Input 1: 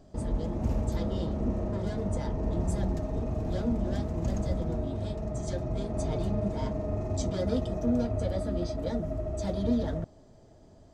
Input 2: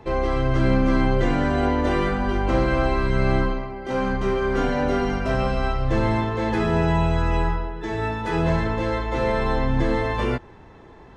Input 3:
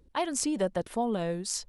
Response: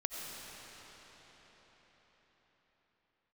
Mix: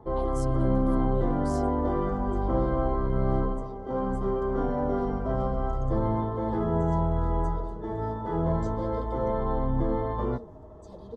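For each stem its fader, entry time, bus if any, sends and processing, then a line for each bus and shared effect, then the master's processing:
-17.0 dB, 1.45 s, muted 9.31–10.33 s, no send, small resonant body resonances 460/1100/2600 Hz, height 14 dB
-5.0 dB, 0.00 s, no send, Savitzky-Golay filter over 41 samples
-15.5 dB, 0.00 s, no send, none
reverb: none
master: high-order bell 2 kHz -11 dB 1.1 oct

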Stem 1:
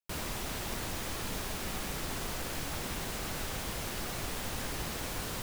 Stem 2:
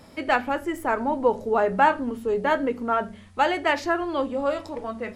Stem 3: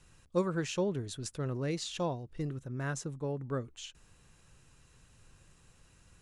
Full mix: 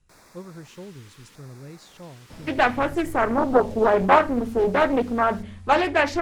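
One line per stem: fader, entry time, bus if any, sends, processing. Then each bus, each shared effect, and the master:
-12.5 dB, 0.00 s, no send, LFO notch square 0.74 Hz 680–3000 Hz; frequency weighting A
+2.0 dB, 2.30 s, no send, none
-11.5 dB, 0.00 s, no send, none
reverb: none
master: bass shelf 170 Hz +10.5 dB; loudspeaker Doppler distortion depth 0.6 ms

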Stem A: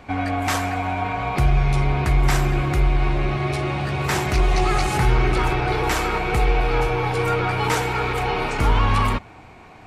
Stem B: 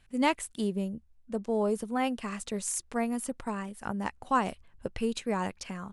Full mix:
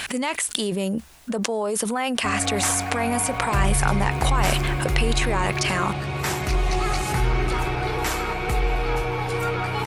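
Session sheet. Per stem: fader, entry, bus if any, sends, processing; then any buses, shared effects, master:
-4.0 dB, 2.15 s, no send, echo send -24 dB, treble shelf 6.2 kHz +7 dB
+1.0 dB, 0.00 s, no send, no echo send, high-pass 960 Hz 6 dB/octave; level flattener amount 100%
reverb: none
echo: delay 621 ms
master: none

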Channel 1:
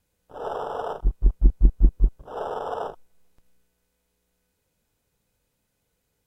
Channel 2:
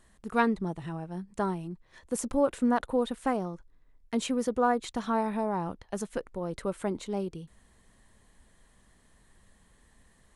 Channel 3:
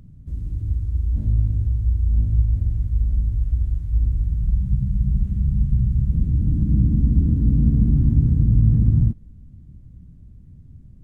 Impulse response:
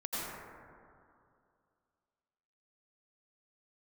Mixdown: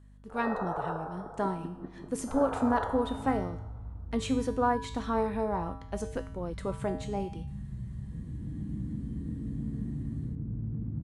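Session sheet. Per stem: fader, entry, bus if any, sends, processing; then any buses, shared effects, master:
-5.0 dB, 0.00 s, send -8.5 dB, FFT band-pass 130–1900 Hz; tilt EQ +4 dB/octave
+2.5 dB, 0.00 s, no send, feedback comb 89 Hz, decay 0.67 s, harmonics odd, mix 80%; level rider gain up to 8 dB
-4.5 dB, 2.00 s, no send, compression 1.5:1, threshold -25 dBFS, peak gain reduction 5.5 dB; band-pass filter 630 Hz, Q 0.54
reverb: on, RT60 2.4 s, pre-delay 78 ms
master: treble shelf 7.5 kHz -7.5 dB; hum 50 Hz, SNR 21 dB

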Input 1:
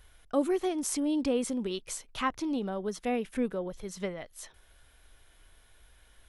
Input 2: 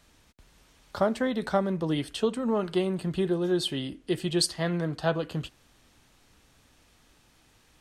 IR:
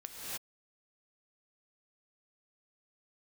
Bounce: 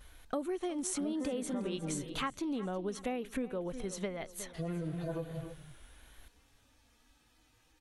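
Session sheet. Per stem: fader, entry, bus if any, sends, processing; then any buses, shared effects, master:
+2.0 dB, 0.00 s, no send, echo send -17.5 dB, band-stop 5.1 kHz, Q 6.5; vibrato 1 Hz 67 cents
-6.0 dB, 0.00 s, muted 2.10–4.54 s, send -5 dB, no echo send, harmonic-percussive separation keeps harmonic; peak limiter -22.5 dBFS, peak gain reduction 9.5 dB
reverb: on, pre-delay 3 ms
echo: feedback delay 361 ms, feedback 34%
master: compression 6:1, threshold -33 dBFS, peak gain reduction 13 dB

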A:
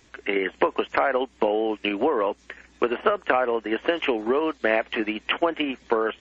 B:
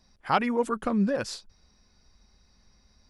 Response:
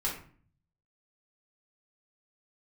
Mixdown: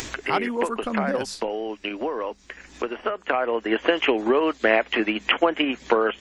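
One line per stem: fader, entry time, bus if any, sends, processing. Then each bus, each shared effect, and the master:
+2.5 dB, 0.00 s, no send, upward compressor, threshold -22 dBFS; auto duck -8 dB, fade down 0.40 s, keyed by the second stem
-1.0 dB, 0.00 s, no send, none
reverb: none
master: treble shelf 4.8 kHz +6 dB; hum notches 50/100/150/200 Hz

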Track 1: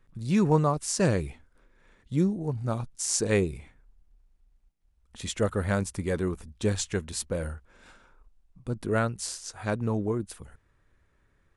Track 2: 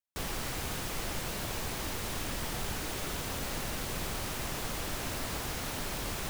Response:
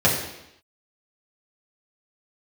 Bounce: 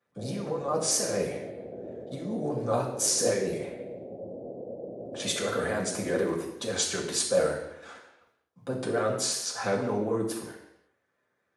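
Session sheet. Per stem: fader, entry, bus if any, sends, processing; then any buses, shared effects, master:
-5.5 dB, 0.00 s, send -7.5 dB, compressor with a negative ratio -30 dBFS, ratio -1; gate -51 dBFS, range -12 dB; vibrato with a chosen wave square 4.4 Hz, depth 100 cents
-2.0 dB, 0.00 s, send -11.5 dB, steep low-pass 610 Hz 48 dB/octave; peak limiter -32 dBFS, peak gain reduction 5.5 dB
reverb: on, RT60 0.85 s, pre-delay 3 ms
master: high-pass 390 Hz 12 dB/octave

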